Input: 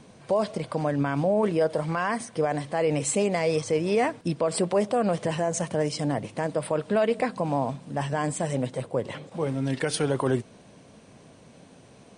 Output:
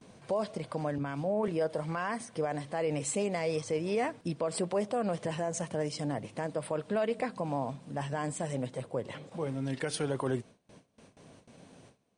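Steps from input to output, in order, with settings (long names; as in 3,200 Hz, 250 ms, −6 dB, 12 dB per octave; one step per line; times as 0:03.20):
in parallel at −3 dB: downward compressor, threshold −39 dBFS, peak gain reduction 18.5 dB
on the sum: noise gate with hold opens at −36 dBFS
0:00.98–0:01.48: multiband upward and downward expander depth 70%
level −8 dB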